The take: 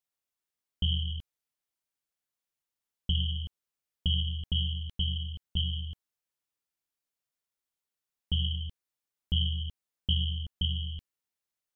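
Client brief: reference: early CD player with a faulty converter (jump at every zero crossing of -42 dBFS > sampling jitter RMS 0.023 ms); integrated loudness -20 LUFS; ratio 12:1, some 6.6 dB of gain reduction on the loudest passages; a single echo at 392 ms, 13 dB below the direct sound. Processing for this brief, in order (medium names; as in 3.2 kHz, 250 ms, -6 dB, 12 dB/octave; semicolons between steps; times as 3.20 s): compression 12:1, threshold -30 dBFS; delay 392 ms -13 dB; jump at every zero crossing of -42 dBFS; sampling jitter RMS 0.023 ms; trim +18 dB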